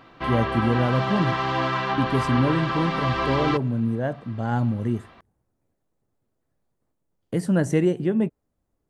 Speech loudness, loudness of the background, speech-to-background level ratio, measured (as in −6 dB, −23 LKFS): −25.0 LKFS, −26.0 LKFS, 1.0 dB